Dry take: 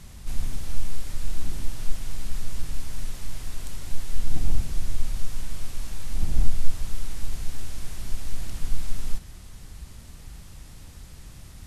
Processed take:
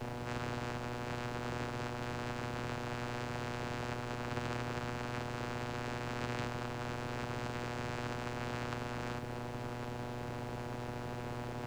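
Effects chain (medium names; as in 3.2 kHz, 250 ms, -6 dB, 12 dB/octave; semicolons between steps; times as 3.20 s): median filter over 41 samples; bass shelf 220 Hz -5.5 dB; compression 1.5:1, threshold -28 dBFS, peak gain reduction 6 dB; vocoder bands 8, saw 121 Hz; added noise brown -76 dBFS; spectrum-flattening compressor 4:1; trim +12 dB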